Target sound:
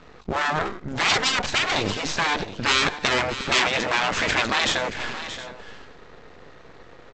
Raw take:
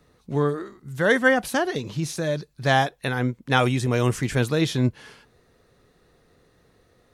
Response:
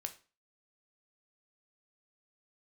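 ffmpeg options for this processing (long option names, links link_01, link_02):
-filter_complex "[0:a]aemphasis=mode=reproduction:type=75fm,acontrast=85,lowshelf=frequency=81:gain=10.5,asplit=2[link_01][link_02];[link_02]highpass=frequency=720:poles=1,volume=15dB,asoftclip=type=tanh:threshold=-1.5dB[link_03];[link_01][link_03]amix=inputs=2:normalize=0,lowpass=frequency=4200:poles=1,volume=-6dB,aresample=16000,aeval=exprs='max(val(0),0)':channel_layout=same,aresample=44100,afftfilt=real='re*lt(hypot(re,im),0.316)':imag='im*lt(hypot(re,im),0.316)':win_size=1024:overlap=0.75,asplit=2[link_04][link_05];[link_05]aecho=0:1:627|718:0.237|0.119[link_06];[link_04][link_06]amix=inputs=2:normalize=0,volume=4dB"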